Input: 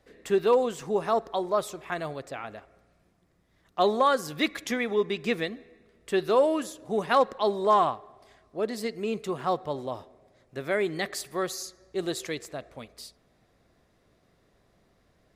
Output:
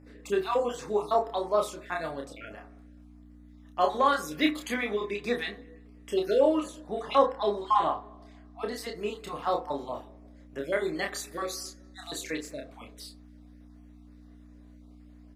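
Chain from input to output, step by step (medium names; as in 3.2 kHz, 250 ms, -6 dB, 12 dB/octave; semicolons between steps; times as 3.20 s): random holes in the spectrogram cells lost 30%; 6.36–8.61 s: treble shelf 8.4 kHz -11 dB; hum 60 Hz, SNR 14 dB; bass shelf 150 Hz -11 dB; doubling 29 ms -4 dB; reverberation RT60 0.40 s, pre-delay 3 ms, DRR 7.5 dB; trim -1.5 dB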